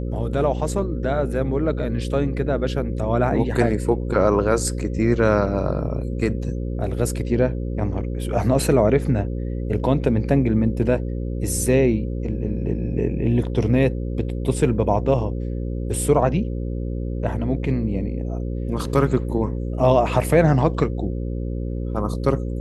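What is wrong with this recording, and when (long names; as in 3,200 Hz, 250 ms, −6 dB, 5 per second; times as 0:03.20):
mains buzz 60 Hz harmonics 9 −26 dBFS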